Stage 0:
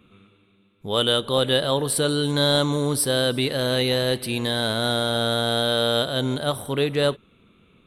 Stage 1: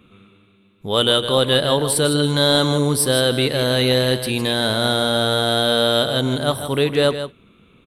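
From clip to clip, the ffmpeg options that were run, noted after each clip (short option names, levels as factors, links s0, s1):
-af "aecho=1:1:157:0.316,volume=1.58"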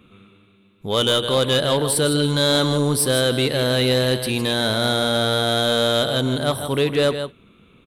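-af "asoftclip=type=tanh:threshold=0.316"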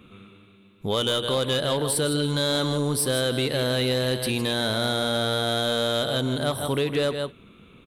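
-af "acompressor=threshold=0.0562:ratio=3,volume=1.19"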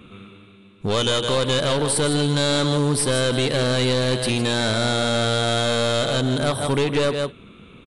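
-af "aeval=exprs='clip(val(0),-1,0.0501)':c=same,aresample=22050,aresample=44100,volume=1.88"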